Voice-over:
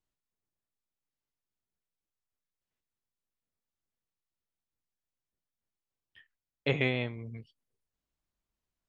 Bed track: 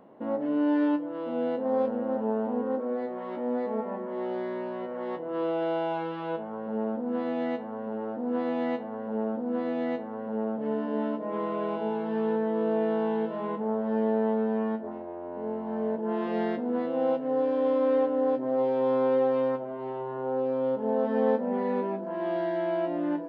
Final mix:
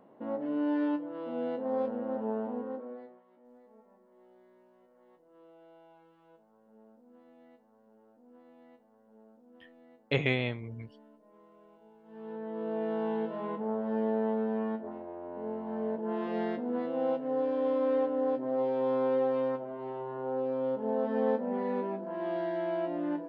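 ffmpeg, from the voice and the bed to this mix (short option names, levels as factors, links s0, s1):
-filter_complex "[0:a]adelay=3450,volume=1.06[s0];[1:a]volume=9.44,afade=t=out:st=2.38:d=0.85:silence=0.0668344,afade=t=in:st=12.03:d=1.08:silence=0.0595662[s1];[s0][s1]amix=inputs=2:normalize=0"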